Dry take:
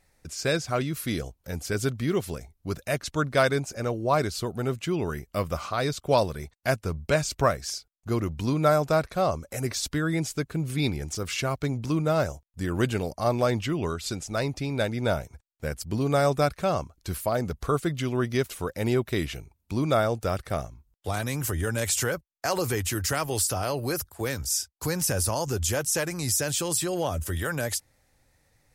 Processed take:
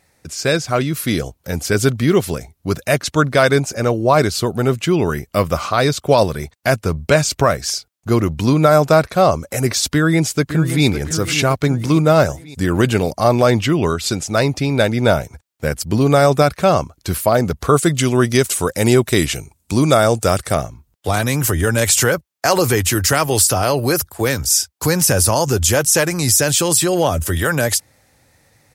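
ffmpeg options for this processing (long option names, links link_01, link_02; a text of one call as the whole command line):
ffmpeg -i in.wav -filter_complex "[0:a]asplit=2[link_01][link_02];[link_02]afade=type=in:start_time=9.88:duration=0.01,afade=type=out:start_time=10.86:duration=0.01,aecho=0:1:560|1120|1680|2240|2800:0.298538|0.149269|0.0746346|0.0373173|0.0186586[link_03];[link_01][link_03]amix=inputs=2:normalize=0,asettb=1/sr,asplit=3[link_04][link_05][link_06];[link_04]atrim=end=17.764[link_07];[link_05]atrim=start=17.76:end=20.55,asetpts=PTS-STARTPTS,afade=type=in:duration=0.004:curve=qsin,afade=type=out:start_time=2.786:duration=0.004:curve=qsin,equalizer=frequency=8300:width_type=o:width=1.1:gain=11.5[link_08];[link_06]atrim=start=20.546[link_09];[link_07][link_08]acrossfade=duration=0.004:curve1=hsin:curve2=qsin[link_10];[link_10][link_09]acrossfade=duration=0.004:curve1=qsin:curve2=hsin,highpass=78,dynaudnorm=framelen=100:gausssize=21:maxgain=3.5dB,alimiter=level_in=9.5dB:limit=-1dB:release=50:level=0:latency=1,volume=-1dB" out.wav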